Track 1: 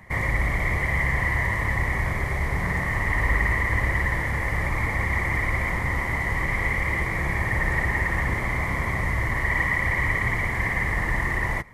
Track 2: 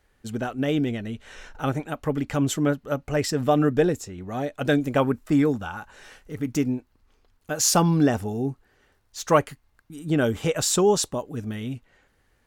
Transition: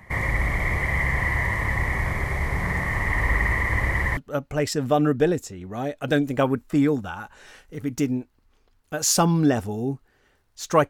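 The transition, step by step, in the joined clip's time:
track 1
4.17 switch to track 2 from 2.74 s

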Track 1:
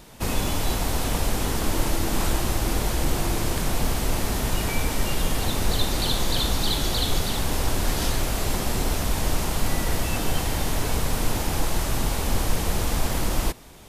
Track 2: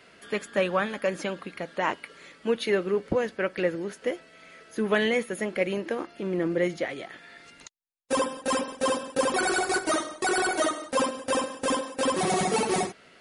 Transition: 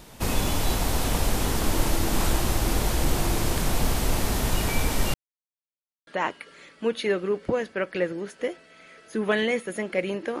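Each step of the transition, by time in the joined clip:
track 1
5.14–6.07 mute
6.07 switch to track 2 from 1.7 s

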